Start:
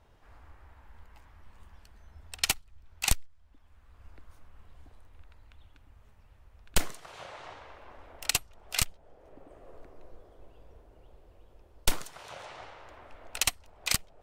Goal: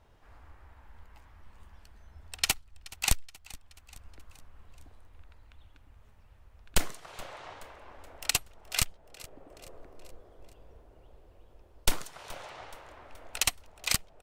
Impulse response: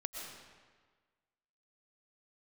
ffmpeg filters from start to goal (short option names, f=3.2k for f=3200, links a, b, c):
-af "aecho=1:1:425|850|1275|1700:0.0944|0.051|0.0275|0.0149"